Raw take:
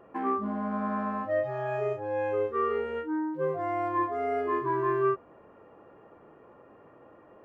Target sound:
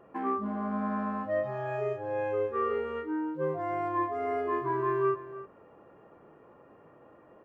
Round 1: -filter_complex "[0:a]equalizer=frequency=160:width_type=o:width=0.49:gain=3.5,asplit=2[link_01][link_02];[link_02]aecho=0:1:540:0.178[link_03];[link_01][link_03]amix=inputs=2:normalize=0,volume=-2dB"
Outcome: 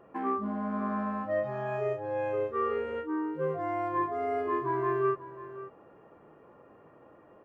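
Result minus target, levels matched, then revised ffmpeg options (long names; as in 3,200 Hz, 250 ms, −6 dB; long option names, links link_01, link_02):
echo 231 ms late
-filter_complex "[0:a]equalizer=frequency=160:width_type=o:width=0.49:gain=3.5,asplit=2[link_01][link_02];[link_02]aecho=0:1:309:0.178[link_03];[link_01][link_03]amix=inputs=2:normalize=0,volume=-2dB"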